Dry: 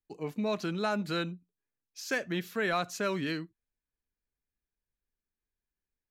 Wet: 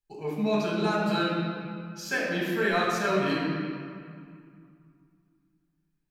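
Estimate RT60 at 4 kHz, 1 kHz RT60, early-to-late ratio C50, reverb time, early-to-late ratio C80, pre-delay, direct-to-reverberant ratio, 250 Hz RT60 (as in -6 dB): 1.5 s, 2.4 s, -1.0 dB, 2.3 s, 0.5 dB, 4 ms, -5.5 dB, 2.9 s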